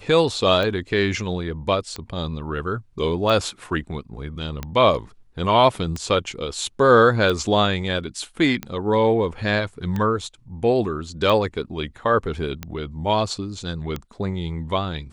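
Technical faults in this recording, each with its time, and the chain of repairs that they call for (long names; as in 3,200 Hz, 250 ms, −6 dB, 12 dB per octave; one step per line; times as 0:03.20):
scratch tick 45 rpm −14 dBFS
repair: click removal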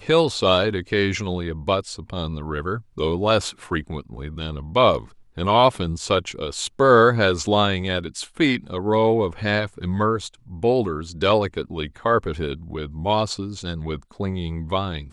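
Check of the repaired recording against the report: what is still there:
none of them is left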